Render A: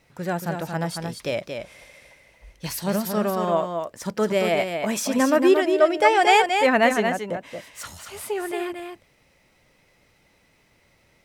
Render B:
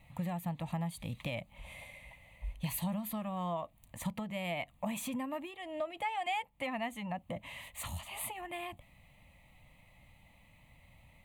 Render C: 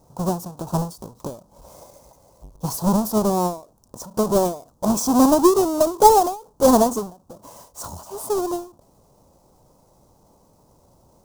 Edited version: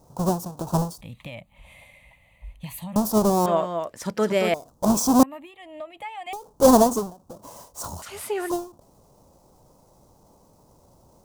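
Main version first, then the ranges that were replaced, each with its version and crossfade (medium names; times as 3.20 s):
C
1.01–2.96 s: from B
3.46–4.54 s: from A
5.23–6.33 s: from B
8.02–8.50 s: from A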